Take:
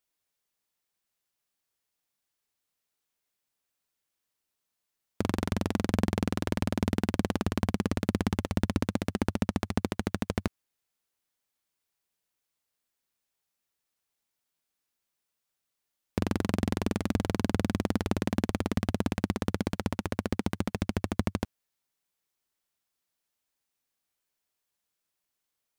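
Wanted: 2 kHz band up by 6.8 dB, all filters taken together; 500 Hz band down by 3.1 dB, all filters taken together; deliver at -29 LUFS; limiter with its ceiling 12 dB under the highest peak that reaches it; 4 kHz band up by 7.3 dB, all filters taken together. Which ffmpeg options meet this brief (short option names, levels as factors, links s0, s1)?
-af "equalizer=f=500:t=o:g=-4.5,equalizer=f=2000:t=o:g=7,equalizer=f=4000:t=o:g=7,volume=3.35,alimiter=limit=0.447:level=0:latency=1"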